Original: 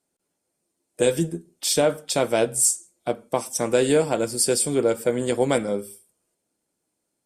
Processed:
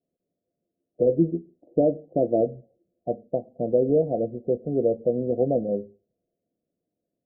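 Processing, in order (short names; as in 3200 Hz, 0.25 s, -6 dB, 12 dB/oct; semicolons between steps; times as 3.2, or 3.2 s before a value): rippled Chebyshev low-pass 720 Hz, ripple 3 dB; 1.09–2.41 bell 320 Hz +8.5 dB 0.43 oct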